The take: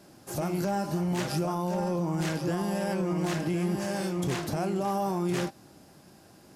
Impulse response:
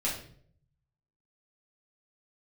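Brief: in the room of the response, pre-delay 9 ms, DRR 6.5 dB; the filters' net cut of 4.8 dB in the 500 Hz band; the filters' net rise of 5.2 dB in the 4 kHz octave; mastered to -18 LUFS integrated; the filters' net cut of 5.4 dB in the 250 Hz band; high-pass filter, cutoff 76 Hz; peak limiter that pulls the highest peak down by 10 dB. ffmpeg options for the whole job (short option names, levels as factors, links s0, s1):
-filter_complex "[0:a]highpass=76,equalizer=f=250:t=o:g=-8.5,equalizer=f=500:t=o:g=-3.5,equalizer=f=4000:t=o:g=7,alimiter=level_in=1.41:limit=0.0631:level=0:latency=1,volume=0.708,asplit=2[s0][s1];[1:a]atrim=start_sample=2205,adelay=9[s2];[s1][s2]afir=irnorm=-1:irlink=0,volume=0.224[s3];[s0][s3]amix=inputs=2:normalize=0,volume=7.08"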